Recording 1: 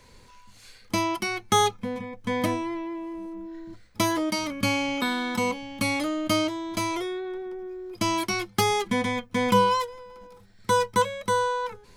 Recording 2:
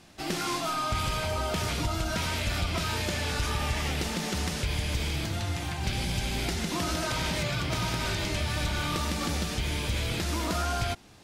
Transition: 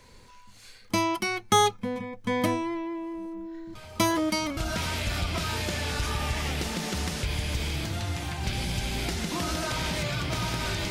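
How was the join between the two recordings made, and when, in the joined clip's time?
recording 1
0:03.75: mix in recording 2 from 0:01.15 0.82 s −15 dB
0:04.57: continue with recording 2 from 0:01.97

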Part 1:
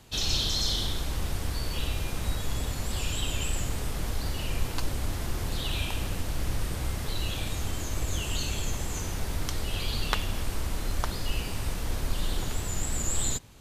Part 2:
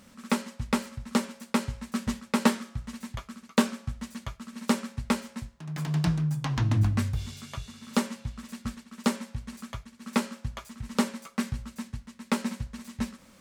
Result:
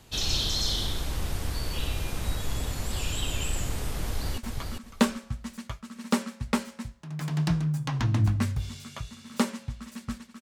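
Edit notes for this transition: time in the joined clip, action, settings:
part 1
0:04.03–0:04.38: delay throw 400 ms, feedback 20%, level −5 dB
0:04.38: continue with part 2 from 0:02.95

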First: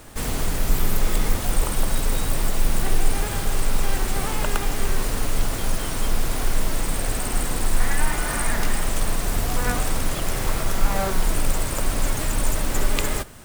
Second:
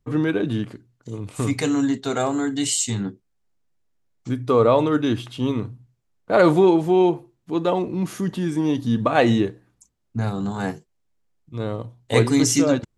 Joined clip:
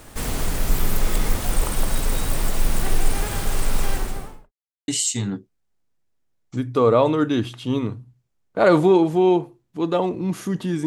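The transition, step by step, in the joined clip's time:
first
0:03.83–0:04.52: fade out and dull
0:04.52–0:04.88: silence
0:04.88: continue with second from 0:02.61

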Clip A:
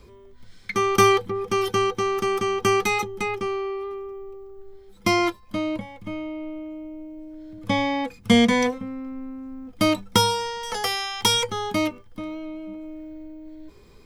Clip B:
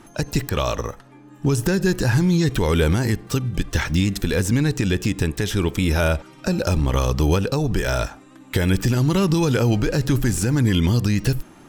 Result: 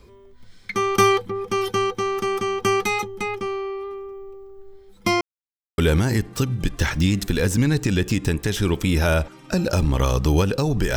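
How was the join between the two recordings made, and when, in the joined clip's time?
clip A
0:05.21–0:05.78: silence
0:05.78: continue with clip B from 0:02.72

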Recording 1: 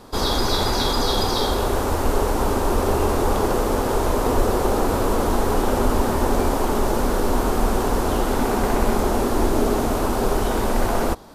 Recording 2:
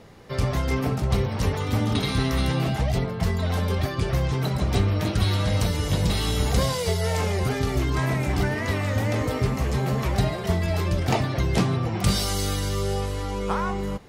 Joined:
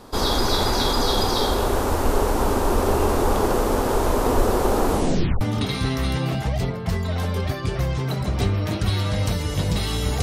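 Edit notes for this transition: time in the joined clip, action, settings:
recording 1
0:04.89: tape stop 0.52 s
0:05.41: continue with recording 2 from 0:01.75

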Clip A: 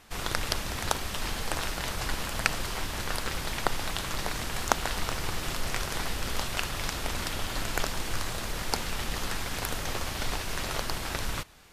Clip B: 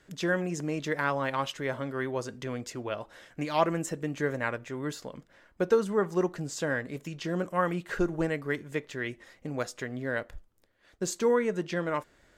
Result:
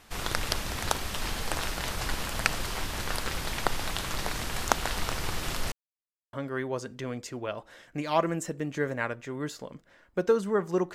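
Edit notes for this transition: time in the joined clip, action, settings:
clip A
0:05.72–0:06.33: silence
0:06.33: continue with clip B from 0:01.76

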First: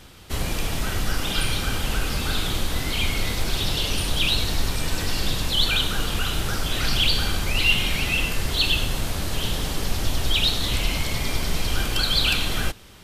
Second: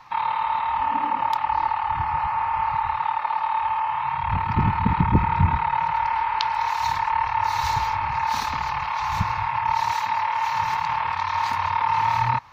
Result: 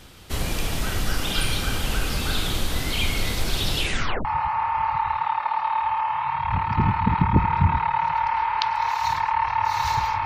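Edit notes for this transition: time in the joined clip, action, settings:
first
0:03.76: tape stop 0.49 s
0:04.25: continue with second from 0:02.04

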